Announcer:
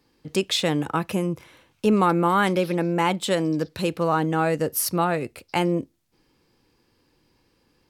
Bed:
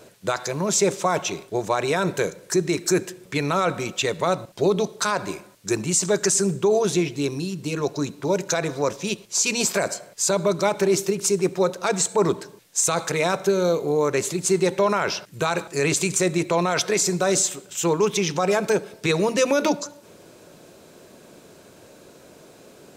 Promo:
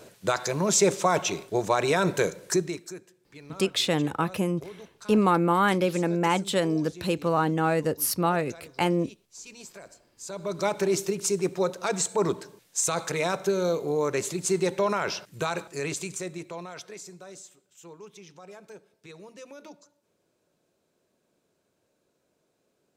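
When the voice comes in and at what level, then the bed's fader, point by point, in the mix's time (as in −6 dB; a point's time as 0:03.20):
3.25 s, −2.0 dB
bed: 0:02.52 −1 dB
0:03.00 −23 dB
0:10.11 −23 dB
0:10.65 −5 dB
0:15.40 −5 dB
0:17.40 −25.5 dB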